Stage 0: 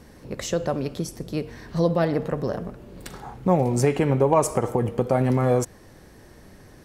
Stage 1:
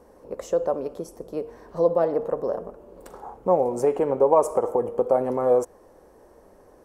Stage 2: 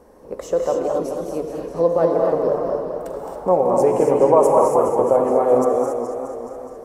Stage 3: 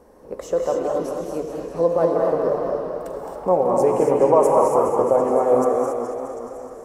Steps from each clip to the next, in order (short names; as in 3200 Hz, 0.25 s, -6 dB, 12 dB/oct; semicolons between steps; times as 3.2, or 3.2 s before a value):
graphic EQ 125/500/1000/2000/4000 Hz -11/+11/+8/-6/-8 dB; gain -8 dB
non-linear reverb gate 0.3 s rising, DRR 1.5 dB; warbling echo 0.21 s, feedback 69%, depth 146 cents, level -8 dB; gain +3 dB
delay with a stepping band-pass 0.186 s, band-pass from 1400 Hz, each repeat 0.7 oct, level -3.5 dB; gain -1.5 dB